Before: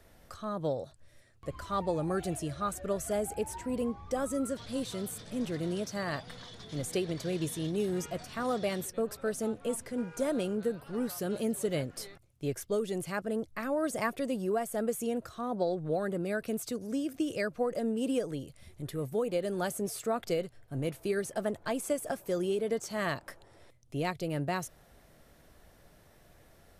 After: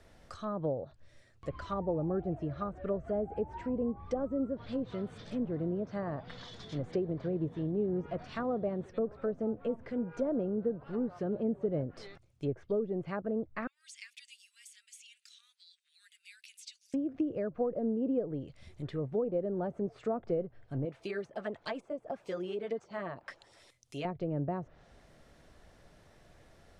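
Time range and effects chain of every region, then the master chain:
13.67–16.94 s: compression 2:1, threshold -34 dBFS + steep high-pass 2.3 kHz
20.85–24.05 s: tilt EQ +3 dB/octave + LFO notch sine 6.5 Hz 280–1800 Hz
whole clip: low-pass that closes with the level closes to 690 Hz, closed at -29.5 dBFS; low-pass 7.4 kHz

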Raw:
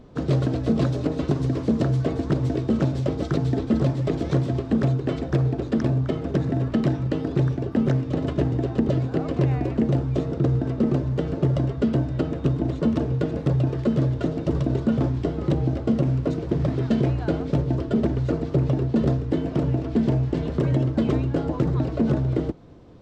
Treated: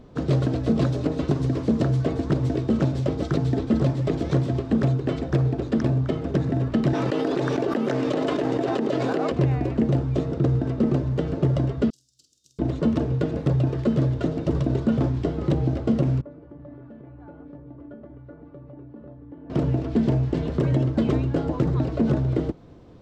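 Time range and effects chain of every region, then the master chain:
6.93–9.32 s: high-pass 370 Hz + level flattener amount 100%
11.90–12.59 s: inverse Chebyshev high-pass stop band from 2.2 kHz, stop band 50 dB + doubling 47 ms -6 dB
16.21–19.50 s: Chebyshev low-pass 1.3 kHz + compression, threshold -23 dBFS + feedback comb 290 Hz, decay 0.32 s, mix 90%
whole clip: none

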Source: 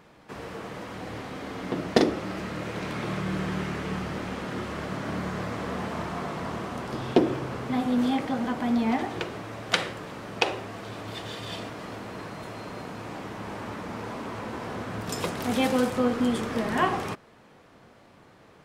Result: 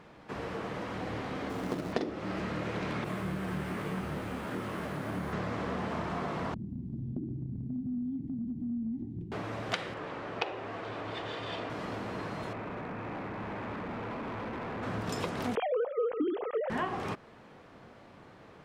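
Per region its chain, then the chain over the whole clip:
1.49–1.93 s: treble shelf 2.4 kHz -10 dB + companded quantiser 4-bit
3.04–5.33 s: careless resampling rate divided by 4×, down none, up hold + detune thickener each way 42 cents
6.54–9.32 s: CVSD coder 64 kbps + inverse Chebyshev low-pass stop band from 510 Hz + compression 3:1, threshold -34 dBFS
9.94–11.70 s: low-pass 9.1 kHz + tone controls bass -6 dB, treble -8 dB + band-stop 210 Hz, Q 6.7
12.53–14.83 s: brick-wall FIR low-pass 2.7 kHz + hard clipper -36.5 dBFS
15.55–16.70 s: formants replaced by sine waves + tilt shelf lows +7 dB, about 1.5 kHz
whole clip: treble shelf 6.5 kHz -11.5 dB; compression 4:1, threshold -32 dBFS; trim +1 dB

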